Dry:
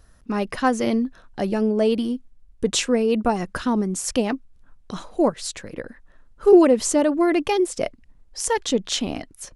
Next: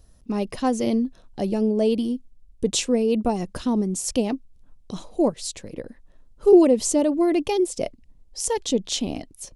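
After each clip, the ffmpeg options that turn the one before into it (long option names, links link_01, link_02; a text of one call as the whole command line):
ffmpeg -i in.wav -af "equalizer=frequency=1500:width=1.2:gain=-13" out.wav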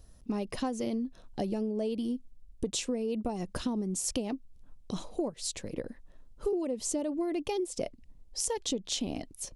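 ffmpeg -i in.wav -af "acompressor=threshold=-27dB:ratio=12,volume=-1.5dB" out.wav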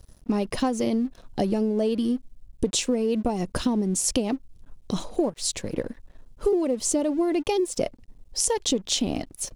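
ffmpeg -i in.wav -af "aeval=exprs='sgn(val(0))*max(abs(val(0))-0.00119,0)':channel_layout=same,volume=8.5dB" out.wav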